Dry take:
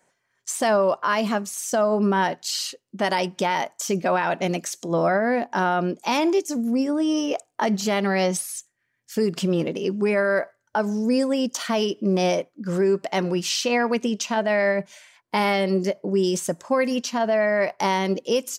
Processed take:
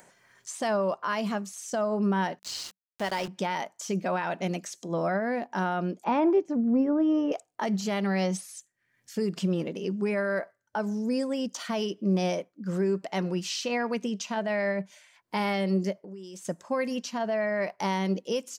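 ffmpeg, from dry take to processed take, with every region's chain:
-filter_complex "[0:a]asettb=1/sr,asplit=3[s0][s1][s2];[s0]atrim=end=2.394[s3];[s1]atrim=start=2.39:end=3.28,asetpts=PTS-STARTPTS,afade=t=in:d=0.004:c=qsin,afade=t=out:st=0.886:d=0.004:c=qsin,highpass=200,aeval=exprs='val(0)*gte(abs(val(0)),0.0355)':c=same[s4];[s2]atrim=start=3.276[s5];[s3][s4]acrossfade=d=0.004:c1=hsin:c2=qsin[s6];[s6][s5]acrossfade=d=0.004:c1=qsin:c2=hsin,asettb=1/sr,asplit=3[s7][s8][s9];[s7]atrim=end=6.044[s10];[s8]atrim=start=6.04:end=7.32,asetpts=PTS-STARTPTS,afade=t=in:d=0.004:c=qsin,afade=t=out:st=1.276:d=0.004:c=qsin,lowpass=1400,acontrast=47[s11];[s9]atrim=start=7.316[s12];[s10][s11]acrossfade=d=0.004:c1=hsin:c2=qsin[s13];[s13][s12]acrossfade=d=0.004:c1=qsin:c2=hsin,asettb=1/sr,asplit=3[s14][s15][s16];[s14]atrim=end=15.994[s17];[s15]atrim=start=15.99:end=16.45,asetpts=PTS-STARTPTS,afade=t=in:d=0.004:c=qsin,afade=t=out:st=0.456:d=0.004:c=qsin,lowshelf=f=200:g=-11,acompressor=threshold=0.02:ratio=6:attack=3.2:release=140:knee=1:detection=peak[s18];[s16]atrim=start=16.446[s19];[s17][s18]acrossfade=d=0.004:c1=hsin:c2=qsin[s20];[s20][s19]acrossfade=d=0.004:c1=qsin:c2=hsin,acrossover=split=8600[s21][s22];[s22]acompressor=threshold=0.00562:ratio=4:attack=1:release=60[s23];[s21][s23]amix=inputs=2:normalize=0,equalizer=f=190:w=7:g=6.5,acompressor=mode=upward:threshold=0.0158:ratio=2.5,volume=0.422"

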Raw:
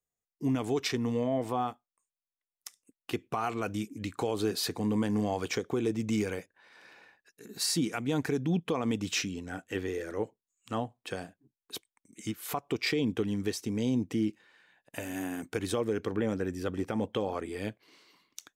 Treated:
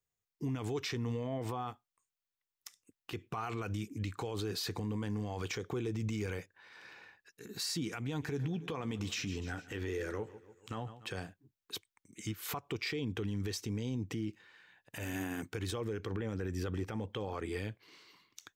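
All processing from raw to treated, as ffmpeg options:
-filter_complex "[0:a]asettb=1/sr,asplit=3[s0][s1][s2];[s0]atrim=end=8.024[s3];[s1]atrim=start=8.02:end=11.08,asetpts=PTS-STARTPTS,afade=t=in:d=0.004:c=qsin,afade=t=out:st=3.056:d=0.004:c=qsin,aecho=1:1:145|290|435|580:0.0891|0.0472|0.025|0.0133,atrim=end_sample=134946,acompressor=threshold=0.0224:ratio=4:attack=3.2:release=140:knee=1:detection=peak,asplit=2[s4][s5];[s5]adelay=14,volume=0.282[s6];[s4][s6]amix=inputs=2:normalize=0,atrim=end_sample=134946[s7];[s2]atrim=start=11.076[s8];[s3][s7]acrossfade=d=0.004:c1=hsin:c2=qsin[s9];[s9][s8]acrossfade=d=0.004:c1=qsin:c2=hsin,equalizer=f=100:t=o:w=0.67:g=6,equalizer=f=250:t=o:w=0.67:g=-5,equalizer=f=630:t=o:w=0.67:g=-6,equalizer=f=10000:t=o:w=0.67:g=-7,alimiter=level_in=2:limit=0.0631:level=0:latency=1:release=62,volume=0.501,volume=1.26"

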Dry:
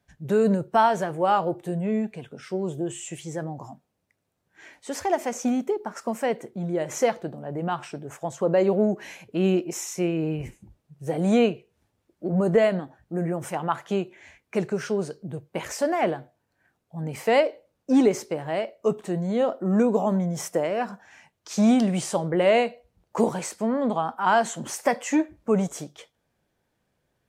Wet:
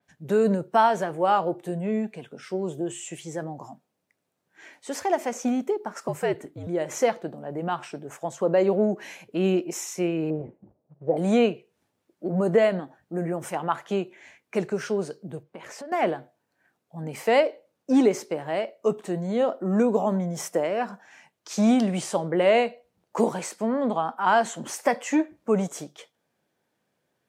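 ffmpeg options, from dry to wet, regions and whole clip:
-filter_complex "[0:a]asettb=1/sr,asplit=3[s0][s1][s2];[s0]atrim=end=6.084[s3];[s1]atrim=start=6.08:end=6.67,asetpts=PTS-STARTPTS,afade=t=in:d=0.004:c=qsin,afade=t=out:st=0.586:d=0.004:c=qsin,afreqshift=-73,equalizer=f=5700:w=5.5:g=-5[s4];[s2]atrim=start=6.666[s5];[s3][s4]acrossfade=d=0.004:c1=hsin:c2=qsin[s6];[s6][s5]acrossfade=d=0.004:c1=qsin:c2=hsin,asettb=1/sr,asplit=3[s7][s8][s9];[s7]atrim=end=10.304[s10];[s8]atrim=start=10.3:end=11.17,asetpts=PTS-STARTPTS,afade=t=in:d=0.004:c=qsin,afade=t=out:st=0.866:d=0.004:c=qsin,acrusher=bits=4:mode=log:mix=0:aa=0.000001,lowpass=f=620:t=q:w=2[s11];[s9]atrim=start=11.166[s12];[s10][s11]acrossfade=d=0.004:c1=hsin:c2=qsin[s13];[s13][s12]acrossfade=d=0.004:c1=qsin:c2=hsin,asettb=1/sr,asplit=3[s14][s15][s16];[s14]atrim=end=15.434[s17];[s15]atrim=start=15.43:end=15.92,asetpts=PTS-STARTPTS,afade=t=in:d=0.004:c=qsin,afade=t=out:st=0.486:d=0.004:c=qsin,lowpass=f=3100:p=1,acompressor=threshold=0.0126:ratio=4:attack=3.2:release=140:knee=1:detection=peak[s18];[s16]atrim=start=15.916[s19];[s17][s18]acrossfade=d=0.004:c1=hsin:c2=qsin[s20];[s20][s19]acrossfade=d=0.004:c1=qsin:c2=hsin,highpass=170,adynamicequalizer=threshold=0.00794:dfrequency=4500:dqfactor=0.7:tfrequency=4500:tqfactor=0.7:attack=5:release=100:ratio=0.375:range=2:mode=cutabove:tftype=highshelf"

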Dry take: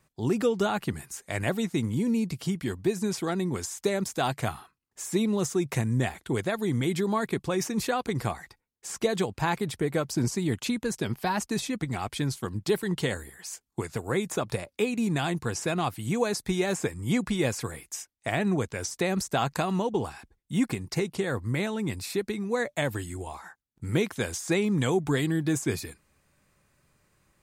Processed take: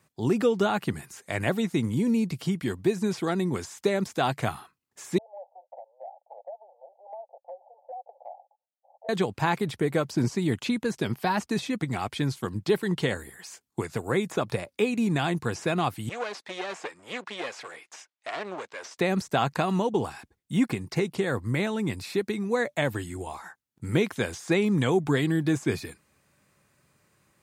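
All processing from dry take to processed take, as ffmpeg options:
-filter_complex "[0:a]asettb=1/sr,asplit=3[s0][s1][s2];[s0]atrim=end=5.184[s3];[s1]atrim=start=5.18:end=9.09,asetpts=PTS-STARTPTS,afade=t=in:d=0.004:c=qsin,afade=t=out:st=3.906:d=0.004:c=qsin,asuperpass=centerf=680:order=12:qfactor=2.1,acompressor=threshold=0.00891:ratio=3:attack=3.2:release=140:knee=1:detection=peak[s4];[s2]atrim=start=9.086[s5];[s3][s4]acrossfade=d=0.004:c1=hsin:c2=qsin[s6];[s6][s5]acrossfade=d=0.004:c1=qsin:c2=hsin,asettb=1/sr,asplit=3[s7][s8][s9];[s7]atrim=end=16.094[s10];[s8]atrim=start=16.09:end=18.98,asetpts=PTS-STARTPTS,afade=t=in:d=0.004:c=qsin,afade=t=out:st=2.886:d=0.004:c=qsin,aeval=exprs='clip(val(0),-1,0.0141)':c=same,highpass=560,lowpass=4500[s11];[s9]atrim=start=18.976[s12];[s10][s11]acrossfade=d=0.004:c1=hsin:c2=qsin[s13];[s13][s12]acrossfade=d=0.004:c1=qsin:c2=hsin,acrossover=split=4500[s14][s15];[s15]acompressor=threshold=0.00447:ratio=4:attack=1:release=60[s16];[s14][s16]amix=inputs=2:normalize=0,highpass=93,volume=1.26"

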